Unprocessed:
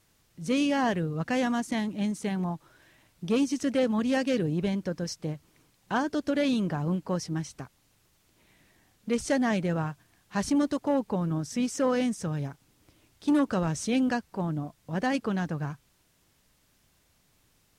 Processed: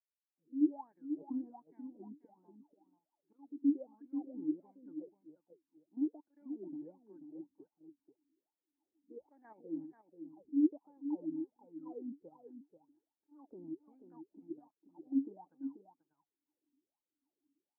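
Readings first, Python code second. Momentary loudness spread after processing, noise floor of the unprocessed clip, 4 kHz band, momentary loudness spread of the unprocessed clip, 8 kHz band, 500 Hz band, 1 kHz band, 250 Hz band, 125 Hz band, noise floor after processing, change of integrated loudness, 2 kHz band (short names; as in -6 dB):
22 LU, -67 dBFS, under -40 dB, 10 LU, under -40 dB, -20.5 dB, -24.5 dB, -10.5 dB, -34.0 dB, under -85 dBFS, -11.0 dB, under -40 dB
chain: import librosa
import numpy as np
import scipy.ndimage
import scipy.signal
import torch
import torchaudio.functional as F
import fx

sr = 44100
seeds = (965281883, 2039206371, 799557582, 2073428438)

y = fx.fade_in_head(x, sr, length_s=1.17)
y = fx.spec_box(y, sr, start_s=9.09, length_s=0.52, low_hz=270.0, high_hz=3200.0, gain_db=9)
y = fx.auto_swell(y, sr, attack_ms=121.0)
y = fx.level_steps(y, sr, step_db=10)
y = fx.wah_lfo(y, sr, hz=1.3, low_hz=270.0, high_hz=1700.0, q=19.0)
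y = fx.formant_cascade(y, sr, vowel='u')
y = y + 10.0 ** (-9.0 / 20.0) * np.pad(y, (int(486 * sr / 1000.0), 0))[:len(y)]
y = y * librosa.db_to_amplitude(10.5)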